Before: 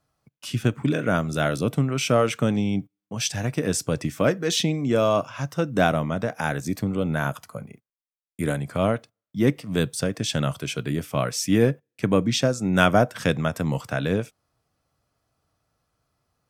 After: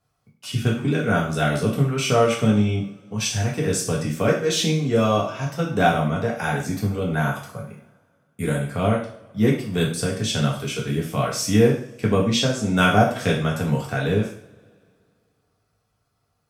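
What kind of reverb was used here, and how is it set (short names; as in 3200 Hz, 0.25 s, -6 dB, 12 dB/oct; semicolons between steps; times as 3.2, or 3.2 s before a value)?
two-slope reverb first 0.48 s, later 2.4 s, from -26 dB, DRR -3.5 dB; gain -3 dB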